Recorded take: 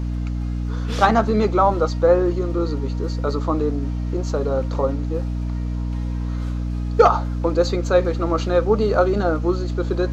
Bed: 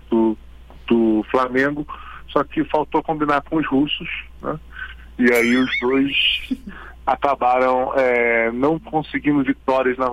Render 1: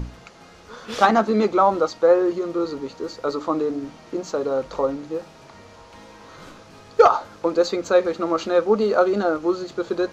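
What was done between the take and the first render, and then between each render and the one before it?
notches 60/120/180/240/300 Hz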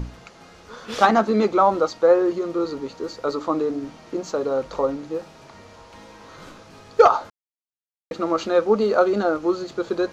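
7.3–8.11 mute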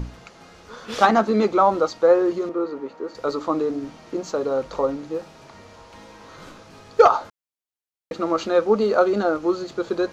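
2.49–3.15 three-band isolator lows -15 dB, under 220 Hz, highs -15 dB, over 2300 Hz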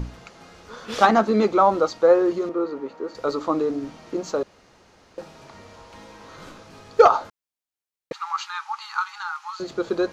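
4.43–5.18 room tone; 8.12–9.6 brick-wall FIR high-pass 800 Hz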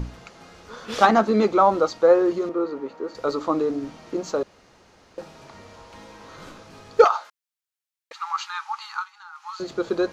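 7.04–8.17 HPF 1100 Hz; 8.78–9.64 dip -13 dB, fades 0.32 s equal-power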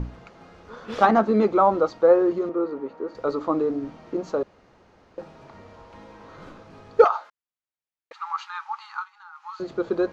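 LPF 1500 Hz 6 dB/oct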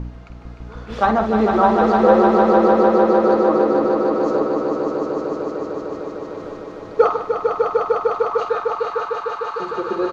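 doubler 50 ms -8 dB; swelling echo 0.151 s, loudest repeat 5, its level -5 dB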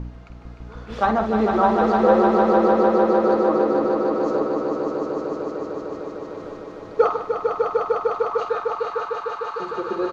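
gain -3 dB

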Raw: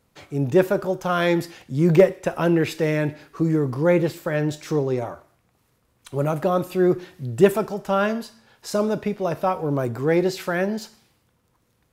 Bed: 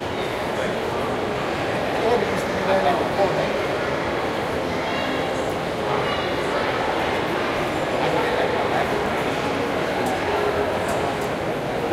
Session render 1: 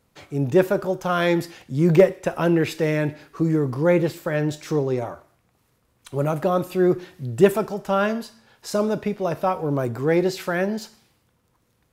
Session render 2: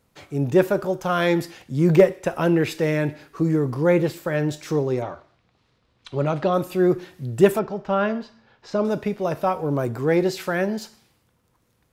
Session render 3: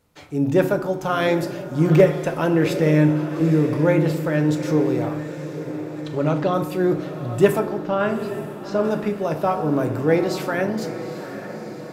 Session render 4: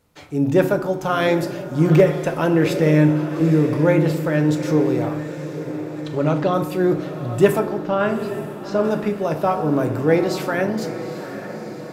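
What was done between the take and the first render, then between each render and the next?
nothing audible
5.02–6.54 synth low-pass 4100 Hz, resonance Q 1.8; 7.59–8.85 air absorption 190 m
diffused feedback echo 0.836 s, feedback 58%, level -11 dB; FDN reverb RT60 0.86 s, low-frequency decay 1.35×, high-frequency decay 0.45×, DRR 7 dB
gain +1.5 dB; limiter -3 dBFS, peak gain reduction 3 dB

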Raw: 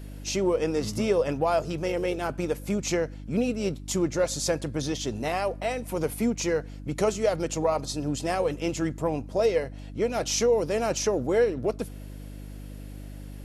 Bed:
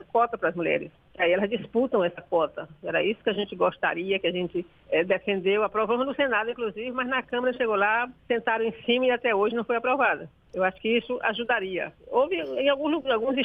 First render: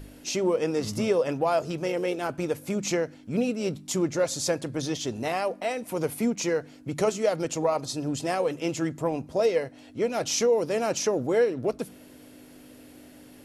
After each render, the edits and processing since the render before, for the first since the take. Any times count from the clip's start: de-hum 50 Hz, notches 4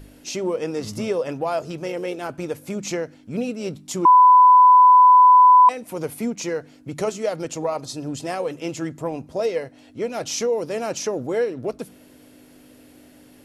4.05–5.69 bleep 1000 Hz -7.5 dBFS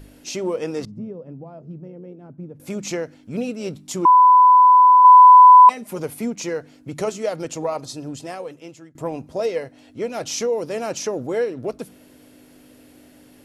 0.85–2.6 band-pass 170 Hz, Q 2; 5.04–6 comb 4.9 ms; 7.77–8.95 fade out, to -23.5 dB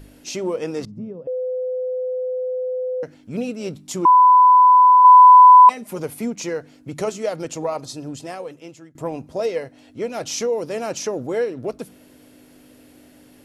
1.27–3.03 bleep 508 Hz -21.5 dBFS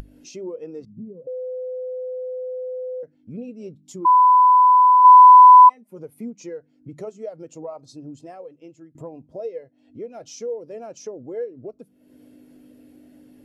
upward compressor, threshold -18 dBFS; spectral expander 1.5:1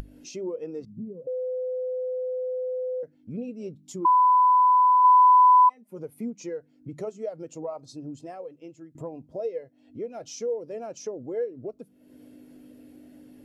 compressor 2:1, threshold -21 dBFS, peak gain reduction 8.5 dB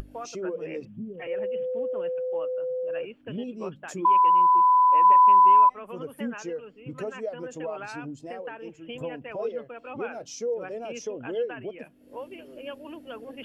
add bed -16 dB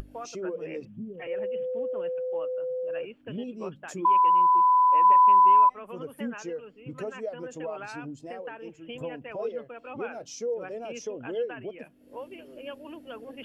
gain -1.5 dB

